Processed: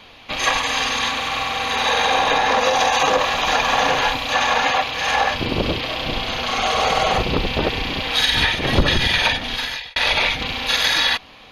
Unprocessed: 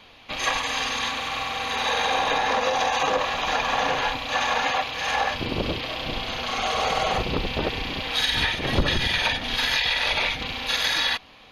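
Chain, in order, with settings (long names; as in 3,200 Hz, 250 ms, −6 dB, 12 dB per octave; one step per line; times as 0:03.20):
0:02.58–0:04.33: high-shelf EQ 6,000 Hz +5.5 dB
0:09.27–0:09.96: fade out
level +5.5 dB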